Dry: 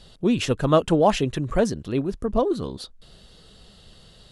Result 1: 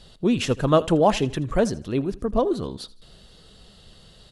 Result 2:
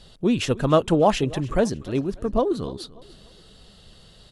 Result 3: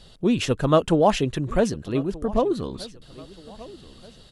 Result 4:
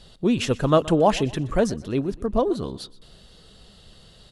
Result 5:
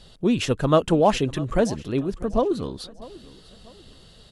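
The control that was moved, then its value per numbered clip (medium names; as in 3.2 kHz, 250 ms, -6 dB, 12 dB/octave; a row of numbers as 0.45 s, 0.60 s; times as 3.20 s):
feedback delay, time: 80 ms, 295 ms, 1229 ms, 123 ms, 645 ms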